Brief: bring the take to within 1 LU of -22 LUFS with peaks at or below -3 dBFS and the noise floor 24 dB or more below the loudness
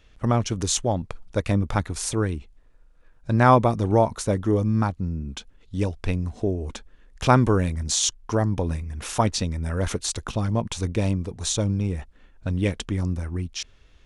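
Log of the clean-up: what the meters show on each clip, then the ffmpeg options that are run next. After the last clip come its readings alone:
loudness -24.5 LUFS; peak level -3.5 dBFS; loudness target -22.0 LUFS
-> -af "volume=1.33,alimiter=limit=0.708:level=0:latency=1"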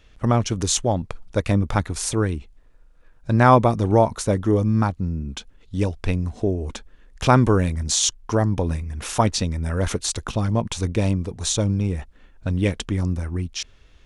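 loudness -22.0 LUFS; peak level -3.0 dBFS; noise floor -52 dBFS

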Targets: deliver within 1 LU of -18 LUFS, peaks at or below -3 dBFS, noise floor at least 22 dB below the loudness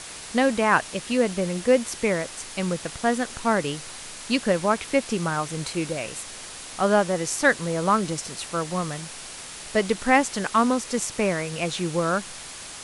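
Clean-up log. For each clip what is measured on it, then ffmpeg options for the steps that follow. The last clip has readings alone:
noise floor -39 dBFS; noise floor target -47 dBFS; loudness -24.5 LUFS; peak level -5.5 dBFS; loudness target -18.0 LUFS
-> -af "afftdn=nr=8:nf=-39"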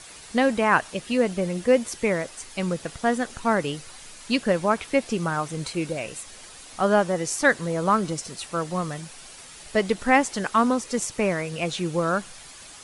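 noise floor -45 dBFS; noise floor target -47 dBFS
-> -af "afftdn=nr=6:nf=-45"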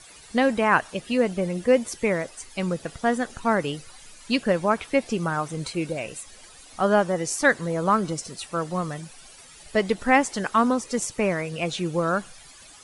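noise floor -48 dBFS; loudness -24.5 LUFS; peak level -5.5 dBFS; loudness target -18.0 LUFS
-> -af "volume=2.11,alimiter=limit=0.708:level=0:latency=1"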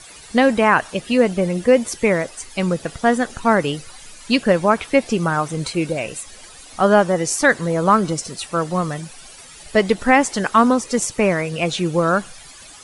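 loudness -18.5 LUFS; peak level -3.0 dBFS; noise floor -42 dBFS

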